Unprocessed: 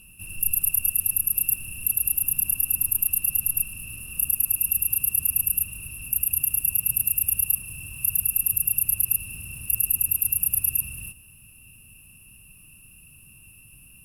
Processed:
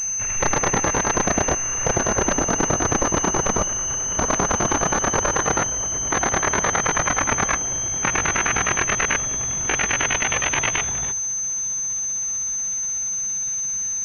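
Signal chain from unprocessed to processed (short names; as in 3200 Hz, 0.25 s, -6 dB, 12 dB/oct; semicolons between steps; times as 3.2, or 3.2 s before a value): gliding pitch shift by +5.5 st starting unshifted; pulse-width modulation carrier 6200 Hz; gain +5.5 dB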